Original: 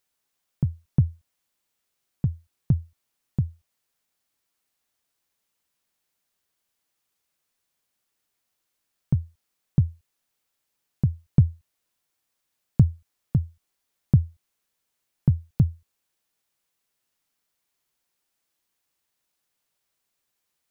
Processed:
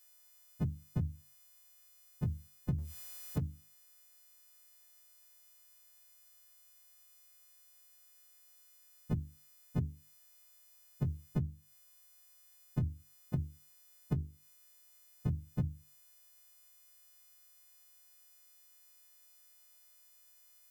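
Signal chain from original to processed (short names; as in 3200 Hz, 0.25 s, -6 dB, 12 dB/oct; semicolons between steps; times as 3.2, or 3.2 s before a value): frequency quantiser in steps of 3 st; 2.78–3.4 power-law curve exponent 0.7; compressor 16:1, threshold -31 dBFS, peak gain reduction 19.5 dB; notches 50/100/150/200/250/300/350/400 Hz; gain +2 dB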